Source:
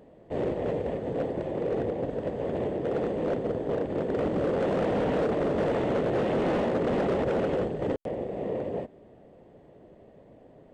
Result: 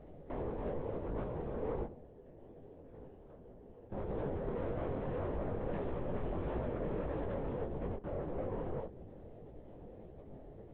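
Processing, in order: CVSD coder 64 kbps; tilt EQ -2.5 dB/octave; compression 10:1, threshold -32 dBFS, peak gain reduction 13.5 dB; 1.85–3.92 s: chord resonator A#2 major, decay 0.38 s; valve stage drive 33 dB, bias 0.75; reverberation RT60 0.70 s, pre-delay 3 ms, DRR 12.5 dB; LPC vocoder at 8 kHz whisper; detune thickener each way 58 cents; trim +4.5 dB

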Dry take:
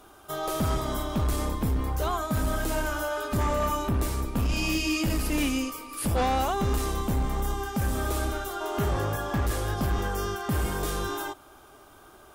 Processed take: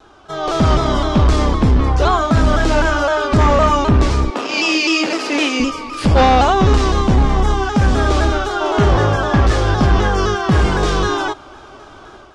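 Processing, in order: low-pass 5.9 kHz 24 dB/octave; level rider gain up to 8 dB; 4.30–5.60 s: high-pass 330 Hz 24 dB/octave; vibrato with a chosen wave saw down 3.9 Hz, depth 100 cents; trim +6 dB

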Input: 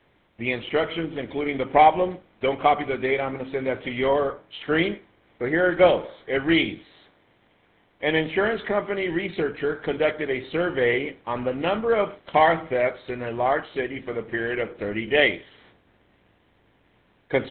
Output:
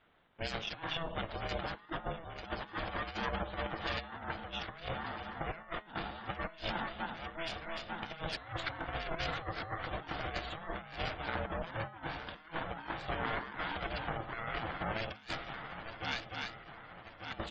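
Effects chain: comb filter that takes the minimum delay 0.63 ms; bass shelf 420 Hz -9 dB; level-controlled noise filter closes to 2.9 kHz, open at -24.5 dBFS; on a send: shuffle delay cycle 1193 ms, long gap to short 3:1, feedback 46%, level -14 dB; on the sum: ring modulator 330 Hz; peaking EQ 2.3 kHz -4 dB 0.77 oct; spectral gate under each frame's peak -25 dB strong; compressor with a negative ratio -37 dBFS, ratio -0.5; de-hum 210.5 Hz, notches 20; trim -1.5 dB

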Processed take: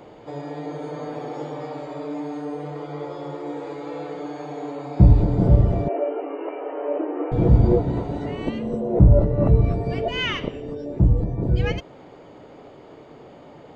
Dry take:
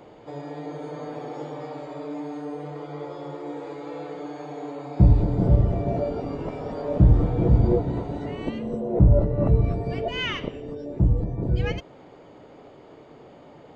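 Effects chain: 5.88–7.32 s: brick-wall FIR band-pass 280–3100 Hz; trim +3 dB

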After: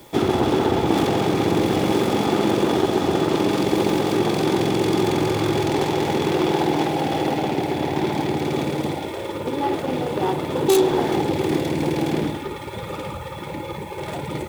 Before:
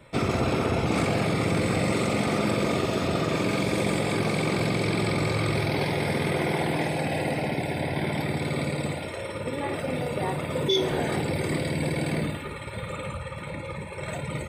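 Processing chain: self-modulated delay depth 0.38 ms; added noise white -53 dBFS; small resonant body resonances 350/820/3400 Hz, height 12 dB, ringing for 20 ms

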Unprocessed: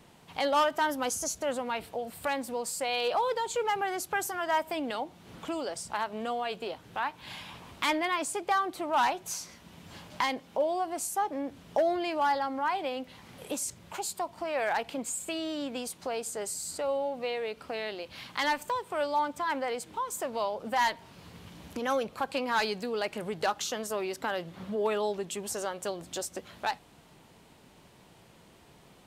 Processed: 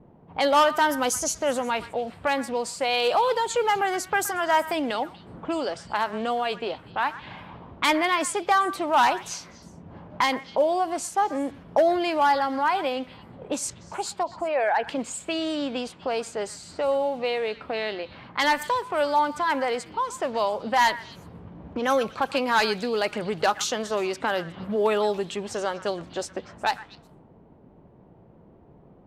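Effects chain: 14.23–14.88 s: resonances exaggerated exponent 1.5; level-controlled noise filter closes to 540 Hz, open at -28 dBFS; repeats whose band climbs or falls 121 ms, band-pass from 1.5 kHz, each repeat 1.4 oct, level -12 dB; trim +6.5 dB

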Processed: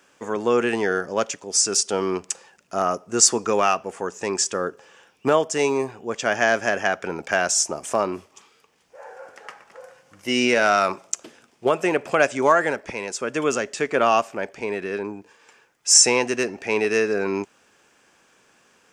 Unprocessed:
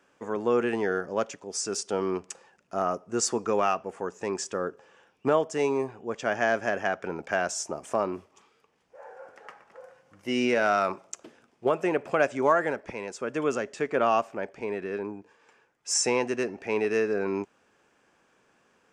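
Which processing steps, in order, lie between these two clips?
treble shelf 2.5 kHz +10 dB; trim +4 dB

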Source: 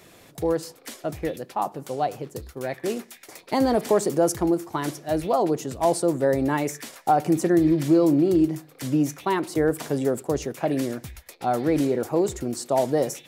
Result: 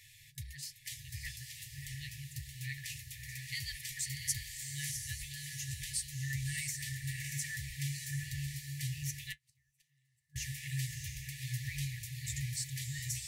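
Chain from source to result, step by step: echo that smears into a reverb 661 ms, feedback 40%, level -3.5 dB; 9.32–10.36 s: inverted gate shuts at -18 dBFS, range -38 dB; flange 1.1 Hz, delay 7.2 ms, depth 2 ms, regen -54%; FFT band-reject 140–1700 Hz

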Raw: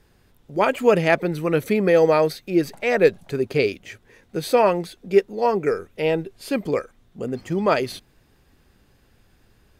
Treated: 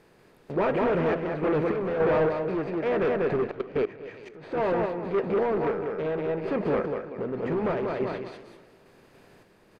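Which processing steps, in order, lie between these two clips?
spectral levelling over time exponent 0.6; in parallel at +1 dB: compression 5:1, threshold -23 dBFS, peak gain reduction 13.5 dB; on the sum: flange 0.73 Hz, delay 6.1 ms, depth 1.7 ms, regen -80%; gate -29 dBFS, range -14 dB; on a send: feedback delay 191 ms, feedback 31%, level -3.5 dB; on the sum: hard clipper -17 dBFS, distortion -8 dB; low-pass that closes with the level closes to 1.8 kHz, closed at -23 dBFS; random-step tremolo; 3.51–4.52 s: level held to a coarse grid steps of 21 dB; modulated delay 239 ms, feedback 41%, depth 213 cents, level -17.5 dB; trim -2.5 dB

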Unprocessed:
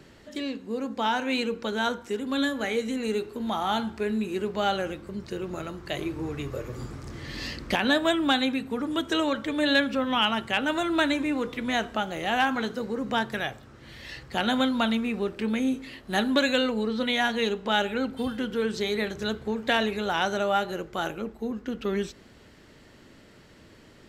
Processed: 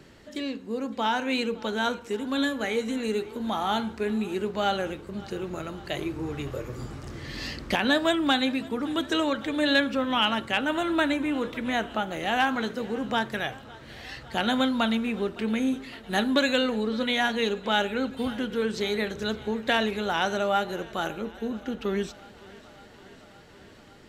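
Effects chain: 10.60–12.12 s: dynamic bell 5.2 kHz, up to -6 dB, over -46 dBFS, Q 1; thinning echo 561 ms, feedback 75%, high-pass 170 Hz, level -21.5 dB

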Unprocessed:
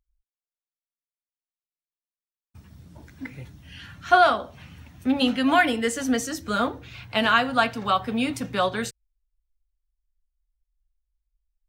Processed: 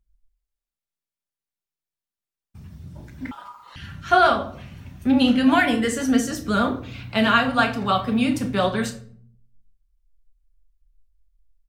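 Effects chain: simulated room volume 700 m³, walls furnished, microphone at 1.2 m; vibrato 12 Hz 35 cents; doubling 32 ms -13 dB; 3.31–3.76 s: ring modulator 1.1 kHz; bass shelf 210 Hz +7.5 dB

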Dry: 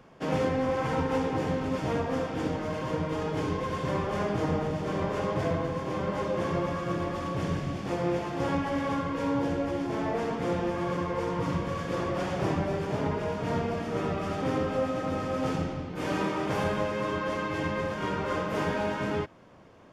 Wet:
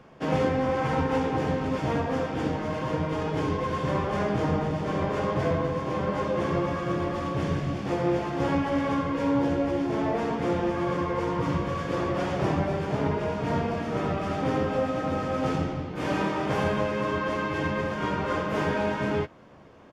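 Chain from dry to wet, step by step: treble shelf 6.9 kHz -7 dB; doubling 14 ms -11 dB; trim +2.5 dB

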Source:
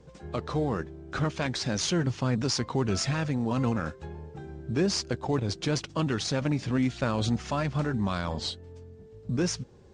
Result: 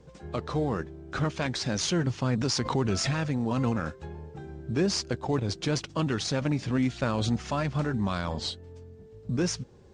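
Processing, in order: 2.38–3.17 s: swell ahead of each attack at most 75 dB/s

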